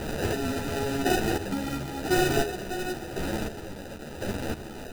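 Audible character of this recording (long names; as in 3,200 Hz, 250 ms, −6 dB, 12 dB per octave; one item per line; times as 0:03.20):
a quantiser's noise floor 6 bits, dither triangular
chopped level 0.95 Hz, depth 60%, duty 30%
aliases and images of a low sample rate 1,100 Hz, jitter 0%
a shimmering, thickened sound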